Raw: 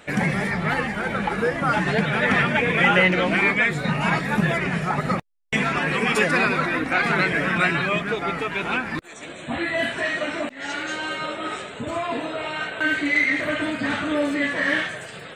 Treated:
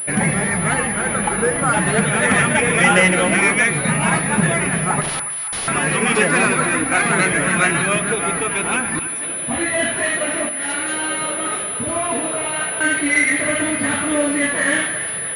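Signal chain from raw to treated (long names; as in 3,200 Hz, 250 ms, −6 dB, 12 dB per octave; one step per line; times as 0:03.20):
0:05.01–0:05.68: wrap-around overflow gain 24.5 dB
echo with a time of its own for lows and highs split 860 Hz, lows 80 ms, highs 283 ms, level −11.5 dB
switching amplifier with a slow clock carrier 10,000 Hz
level +3.5 dB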